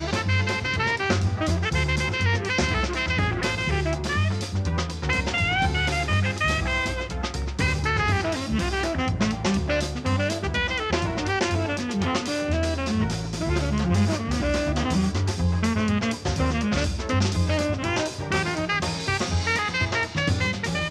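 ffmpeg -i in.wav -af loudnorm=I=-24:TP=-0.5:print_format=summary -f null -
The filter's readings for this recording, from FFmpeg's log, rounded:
Input Integrated:    -24.5 LUFS
Input True Peak:      -9.1 dBTP
Input LRA:             1.2 LU
Input Threshold:     -34.5 LUFS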